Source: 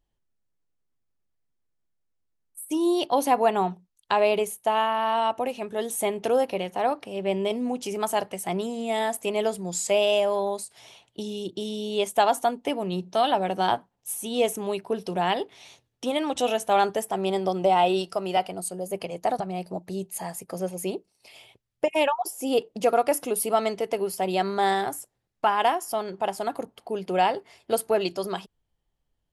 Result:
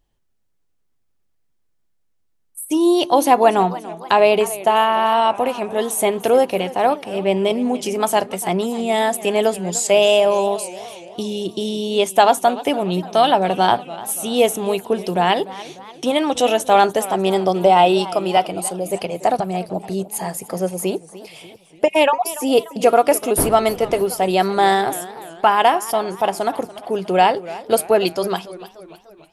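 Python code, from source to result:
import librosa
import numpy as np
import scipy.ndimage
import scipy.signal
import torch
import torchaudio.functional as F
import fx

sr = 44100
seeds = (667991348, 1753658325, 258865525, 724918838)

y = fx.dmg_wind(x, sr, seeds[0], corner_hz=470.0, level_db=-29.0, at=(23.37, 24.02), fade=0.02)
y = fx.echo_warbled(y, sr, ms=293, feedback_pct=53, rate_hz=2.8, cents=161, wet_db=-17.0)
y = F.gain(torch.from_numpy(y), 8.0).numpy()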